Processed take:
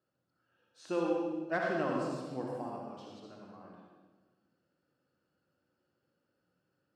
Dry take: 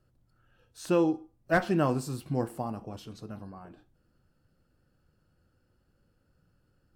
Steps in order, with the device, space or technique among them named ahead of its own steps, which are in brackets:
supermarket ceiling speaker (band-pass filter 250–5,500 Hz; convolution reverb RT60 1.3 s, pre-delay 54 ms, DRR −2 dB)
level −8.5 dB

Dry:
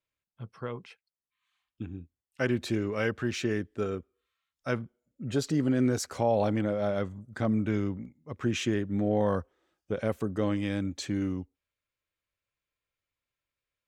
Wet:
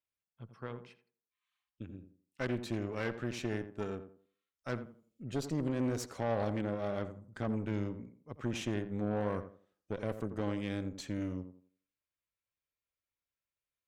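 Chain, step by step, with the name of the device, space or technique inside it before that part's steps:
0:04.82–0:05.23: high shelf with overshoot 1,800 Hz +9.5 dB, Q 1.5
rockabilly slapback (tube saturation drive 24 dB, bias 0.8; tape delay 85 ms, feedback 34%, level −8 dB, low-pass 1,200 Hz)
level −3.5 dB

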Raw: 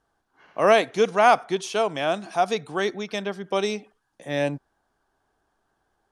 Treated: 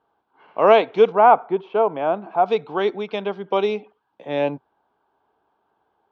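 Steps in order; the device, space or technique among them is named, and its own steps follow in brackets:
guitar cabinet (loudspeaker in its box 94–3,400 Hz, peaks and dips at 130 Hz −4 dB, 440 Hz +5 dB, 910 Hz +7 dB, 1,800 Hz −9 dB)
0:01.12–0:02.46: low-pass filter 1,500 Hz 12 dB per octave
low-shelf EQ 220 Hz −3.5 dB
level +2.5 dB

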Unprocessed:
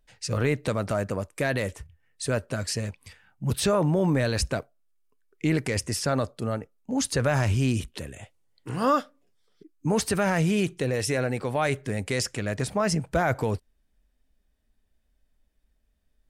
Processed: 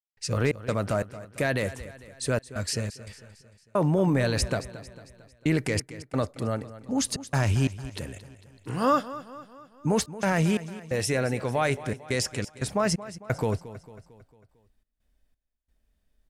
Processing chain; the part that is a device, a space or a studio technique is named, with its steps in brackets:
trance gate with a delay (gate pattern ".xx.xx..xxxxxx" 88 BPM −60 dB; repeating echo 225 ms, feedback 52%, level −15.5 dB)

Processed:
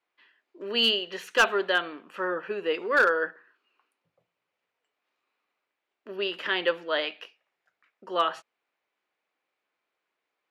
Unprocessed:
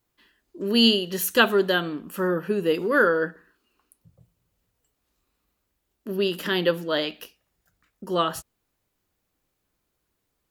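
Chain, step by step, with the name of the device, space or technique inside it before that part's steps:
megaphone (band-pass filter 560–3,000 Hz; parametric band 2,300 Hz +5 dB 0.49 octaves; hard clipping −13.5 dBFS, distortion −17 dB)

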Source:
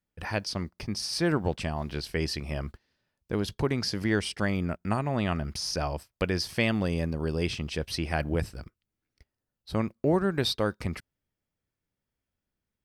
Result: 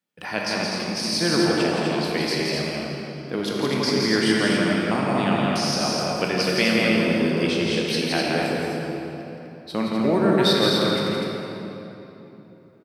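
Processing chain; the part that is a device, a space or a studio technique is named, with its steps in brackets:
stadium PA (high-pass filter 160 Hz 24 dB per octave; parametric band 3,400 Hz +4 dB 1.1 octaves; loudspeakers that aren't time-aligned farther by 58 metres −4 dB, 86 metres −5 dB; convolution reverb RT60 3.4 s, pre-delay 17 ms, DRR −1.5 dB)
level +2 dB

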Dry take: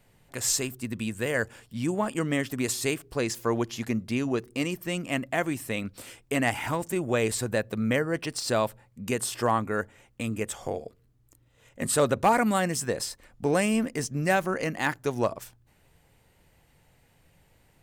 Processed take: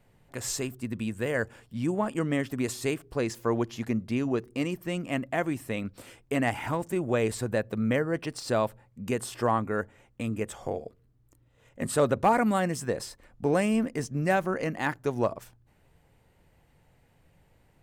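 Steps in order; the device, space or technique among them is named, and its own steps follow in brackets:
behind a face mask (high-shelf EQ 2,300 Hz −8 dB)

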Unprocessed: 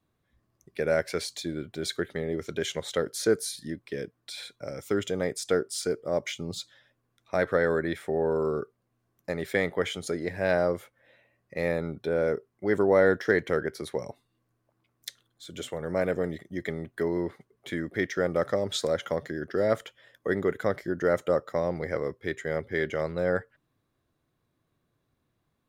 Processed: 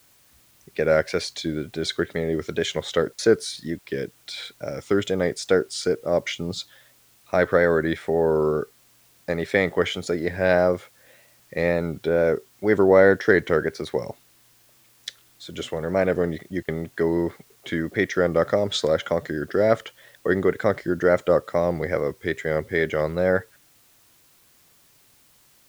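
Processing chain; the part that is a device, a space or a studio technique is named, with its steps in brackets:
worn cassette (low-pass filter 6,300 Hz 12 dB per octave; tape wow and flutter; tape dropouts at 0:03.13/0:03.79/0:07.18/0:16.63, 53 ms −29 dB; white noise bed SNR 34 dB)
level +6 dB

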